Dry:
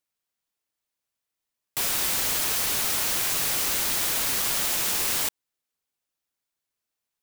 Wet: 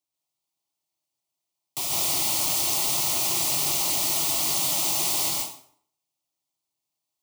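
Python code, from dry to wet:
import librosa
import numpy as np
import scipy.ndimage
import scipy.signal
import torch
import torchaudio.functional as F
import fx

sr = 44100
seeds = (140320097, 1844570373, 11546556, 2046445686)

y = scipy.signal.sosfilt(scipy.signal.butter(2, 60.0, 'highpass', fs=sr, output='sos'), x)
y = fx.peak_eq(y, sr, hz=16000.0, db=-5.0, octaves=0.85)
y = fx.fixed_phaser(y, sr, hz=320.0, stages=8)
y = fx.rev_plate(y, sr, seeds[0], rt60_s=0.57, hf_ratio=0.8, predelay_ms=115, drr_db=-2.0)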